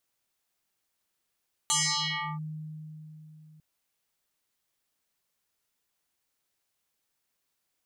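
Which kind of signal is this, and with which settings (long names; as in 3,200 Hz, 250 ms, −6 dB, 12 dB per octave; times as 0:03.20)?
two-operator FM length 1.90 s, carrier 155 Hz, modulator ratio 6.65, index 8.8, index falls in 0.69 s linear, decay 3.79 s, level −22 dB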